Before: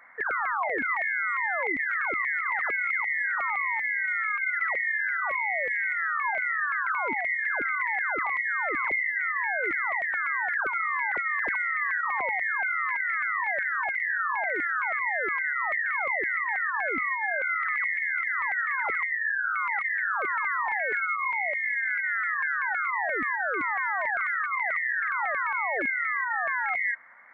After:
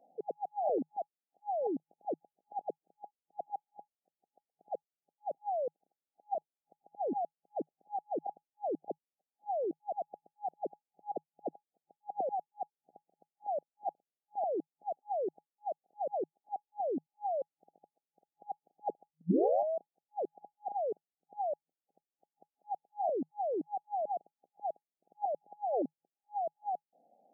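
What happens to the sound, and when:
19.21 tape start 0.68 s
whole clip: FFT band-pass 160–830 Hz; gain +1 dB

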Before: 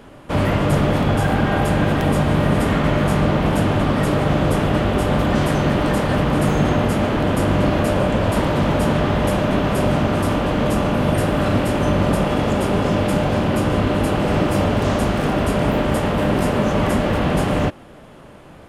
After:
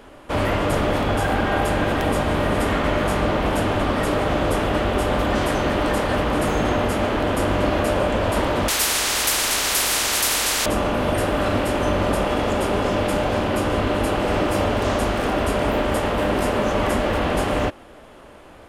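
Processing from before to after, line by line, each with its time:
8.68–10.66 spectral compressor 10:1
whole clip: bell 150 Hz -11.5 dB 1.1 oct

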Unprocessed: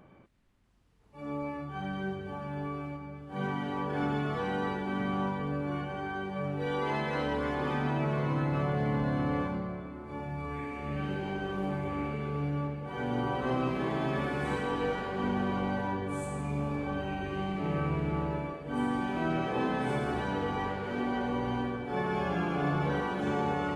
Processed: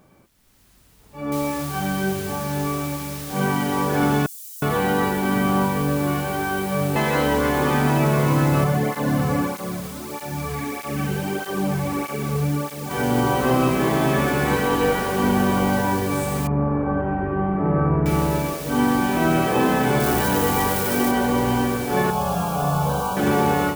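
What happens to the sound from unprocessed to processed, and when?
1.32 noise floor step -70 dB -48 dB
4.26–6.96 bands offset in time highs, lows 0.36 s, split 5800 Hz
8.64–12.91 tape flanging out of phase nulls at 1.6 Hz, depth 3.6 ms
16.47–18.06 LPF 1500 Hz 24 dB/oct
20–21.11 switching spikes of -30.5 dBFS
22.1–23.17 fixed phaser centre 800 Hz, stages 4
whole clip: AGC gain up to 10 dB; gain +1.5 dB

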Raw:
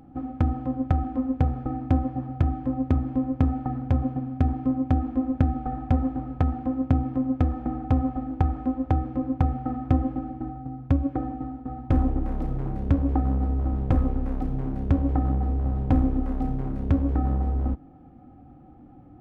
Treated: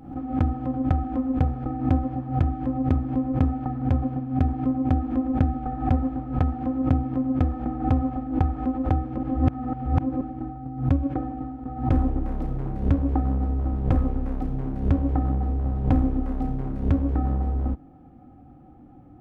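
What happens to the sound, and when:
9.18–10.21 reverse
whole clip: backwards sustainer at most 110 dB/s

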